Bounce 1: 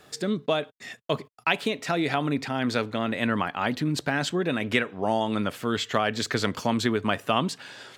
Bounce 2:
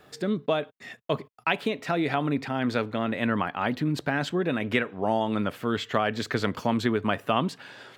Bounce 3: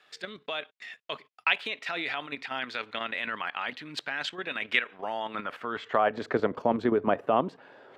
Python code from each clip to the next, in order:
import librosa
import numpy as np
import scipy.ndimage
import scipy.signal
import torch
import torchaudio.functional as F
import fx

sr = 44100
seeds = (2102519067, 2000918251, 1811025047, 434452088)

y1 = fx.peak_eq(x, sr, hz=7400.0, db=-9.0, octaves=1.9)
y2 = fx.filter_sweep_bandpass(y1, sr, from_hz=2800.0, to_hz=540.0, start_s=4.88, end_s=6.39, q=1.0)
y2 = fx.level_steps(y2, sr, step_db=10)
y2 = y2 * 10.0 ** (7.5 / 20.0)